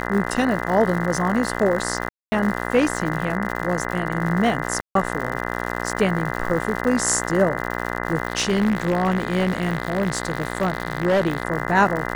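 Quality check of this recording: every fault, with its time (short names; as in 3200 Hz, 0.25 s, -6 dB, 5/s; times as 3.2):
buzz 60 Hz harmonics 34 -27 dBFS
crackle 140/s -27 dBFS
2.09–2.32 gap 0.23 s
4.81–4.95 gap 0.143 s
8.28–11.45 clipped -15 dBFS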